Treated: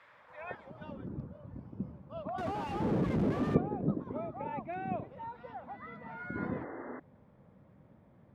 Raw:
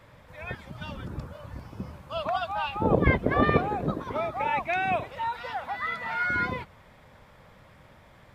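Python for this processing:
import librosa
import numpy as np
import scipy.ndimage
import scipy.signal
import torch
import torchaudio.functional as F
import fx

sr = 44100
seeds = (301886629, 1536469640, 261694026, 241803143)

y = fx.clip_1bit(x, sr, at=(2.38, 3.55))
y = fx.spec_paint(y, sr, seeds[0], shape='noise', start_s=6.36, length_s=0.64, low_hz=240.0, high_hz=2100.0, level_db=-33.0)
y = fx.filter_sweep_bandpass(y, sr, from_hz=1700.0, to_hz=220.0, start_s=0.07, end_s=1.18, q=1.1)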